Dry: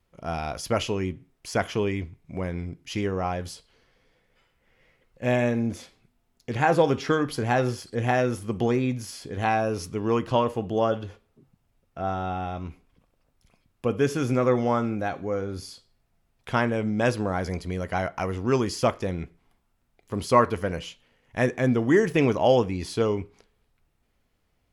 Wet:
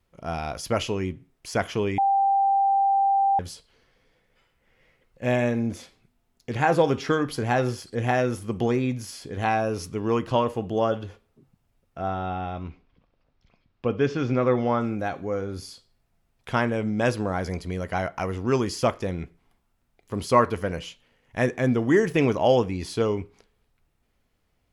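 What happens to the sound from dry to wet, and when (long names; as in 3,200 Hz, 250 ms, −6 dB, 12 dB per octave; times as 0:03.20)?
0:01.98–0:03.39: beep over 788 Hz −17.5 dBFS
0:12.08–0:14.81: low-pass filter 4,900 Hz 24 dB per octave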